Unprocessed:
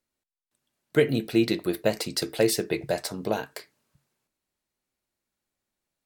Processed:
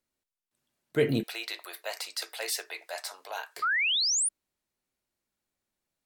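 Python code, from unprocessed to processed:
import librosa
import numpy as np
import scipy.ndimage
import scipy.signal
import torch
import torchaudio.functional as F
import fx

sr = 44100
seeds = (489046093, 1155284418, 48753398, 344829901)

y = fx.highpass(x, sr, hz=740.0, slope=24, at=(1.23, 3.57))
y = fx.transient(y, sr, attack_db=-5, sustain_db=2)
y = fx.spec_paint(y, sr, seeds[0], shape='rise', start_s=3.62, length_s=0.67, low_hz=1200.0, high_hz=10000.0, level_db=-25.0)
y = y * 10.0 ** (-1.5 / 20.0)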